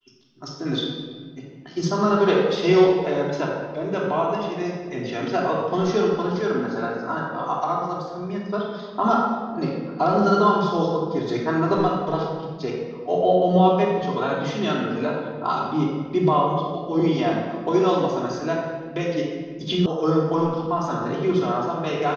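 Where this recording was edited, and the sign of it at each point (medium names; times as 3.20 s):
19.86 s: sound stops dead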